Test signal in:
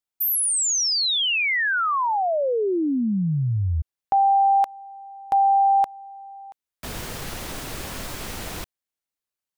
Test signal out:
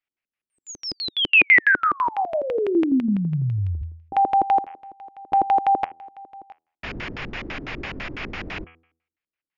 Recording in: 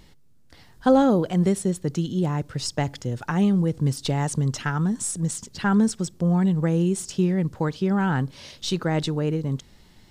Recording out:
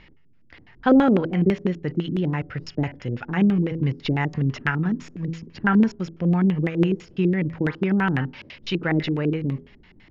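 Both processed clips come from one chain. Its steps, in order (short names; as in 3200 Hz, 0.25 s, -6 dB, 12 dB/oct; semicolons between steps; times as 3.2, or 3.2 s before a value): rippled Chebyshev low-pass 7000 Hz, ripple 6 dB; de-hum 82.04 Hz, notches 40; LFO low-pass square 6 Hz 330–2600 Hz; gain +5 dB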